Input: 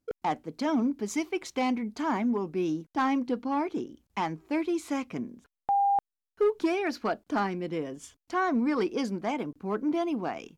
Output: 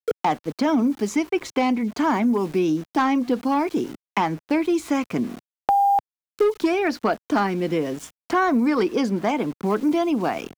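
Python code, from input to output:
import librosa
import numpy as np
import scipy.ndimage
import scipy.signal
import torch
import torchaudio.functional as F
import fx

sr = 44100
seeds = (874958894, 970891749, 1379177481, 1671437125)

y = np.where(np.abs(x) >= 10.0 ** (-48.5 / 20.0), x, 0.0)
y = fx.band_squash(y, sr, depth_pct=70)
y = y * librosa.db_to_amplitude(7.0)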